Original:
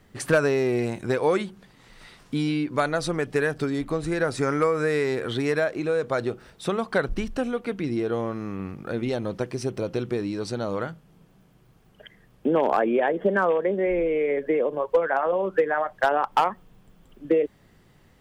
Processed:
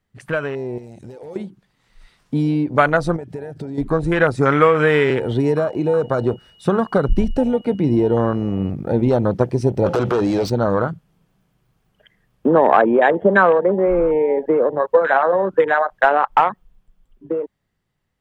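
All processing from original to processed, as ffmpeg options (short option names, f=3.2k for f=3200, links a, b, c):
-filter_complex "[0:a]asettb=1/sr,asplit=3[a][b][c];[a]atrim=end=0.784[d];[b]atrim=start=0.78:end=1.36,asetpts=PTS-STARTPTS,afade=t=in:d=0.004:c=qsin,afade=t=out:st=0.576:d=0.004:c=qsin,equalizer=f=6.2k:w=0.56:g=12,acompressor=threshold=-30dB:ratio=8:attack=3.2:release=140:knee=1:detection=peak,aeval=exprs='0.0398*(abs(mod(val(0)/0.0398+3,4)-2)-1)':c=same[e];[c]atrim=start=1.356[f];[d][e]acrossfade=d=0.004:c1=hsin:c2=qsin[g];[g][f]acrossfade=d=0.004:c1=qsin:c2=hsin,asettb=1/sr,asplit=3[h][i][j];[h]atrim=end=3.164[k];[i]atrim=start=3.16:end=3.78,asetpts=PTS-STARTPTS,afade=t=in:d=0.004:c=qsin,afade=t=out:st=0.616:d=0.004:c=qsin,bandreject=f=1.1k:w=9.8,acompressor=threshold=-34dB:ratio=5:attack=3.2:release=140:knee=1:detection=peak[l];[j]atrim=start=3.776[m];[k][l]acrossfade=d=0.004:c1=hsin:c2=qsin[n];[n][m]acrossfade=d=0.004:c1=qsin:c2=hsin,asettb=1/sr,asplit=3[o][p][q];[o]atrim=end=5.104[r];[p]atrim=start=5.1:end=8.7,asetpts=PTS-STARTPTS,afade=t=in:d=0.004:c=qsin,afade=t=out:st=3.596:d=0.004:c=qsin,aeval=exprs='val(0)+0.00447*sin(2*PI*2900*n/s)':c=same,acrossover=split=460|3000[s][t][u];[t]acompressor=threshold=-29dB:ratio=8:attack=3.2:release=140:knee=2.83:detection=peak[v];[s][v][u]amix=inputs=3:normalize=0[w];[q]atrim=start=8.696[x];[r][w]acrossfade=d=0.004:c1=hsin:c2=qsin[y];[y][x]acrossfade=d=0.004:c1=qsin:c2=hsin,asettb=1/sr,asplit=3[z][aa][ab];[z]atrim=end=9.864[ac];[aa]atrim=start=9.86:end=10.5,asetpts=PTS-STARTPTS,afade=t=in:d=0.004:c=qsin,afade=t=out:st=0.636:d=0.004:c=qsin,acrossover=split=590 6700:gain=0.224 1 0.224[ad][ae][af];[ad][ae][af]amix=inputs=3:normalize=0,acompressor=threshold=-37dB:ratio=3:attack=3.2:release=140:knee=1:detection=peak,aeval=exprs='0.0708*sin(PI/2*4.47*val(0)/0.0708)':c=same[ag];[ab]atrim=start=10.496[ah];[ac][ag]acrossfade=d=0.004:c1=hsin:c2=qsin[ai];[ai][ah]acrossfade=d=0.004:c1=qsin:c2=hsin,afwtdn=0.0282,equalizer=f=340:t=o:w=1.7:g=-4.5,dynaudnorm=f=110:g=31:m=16.5dB"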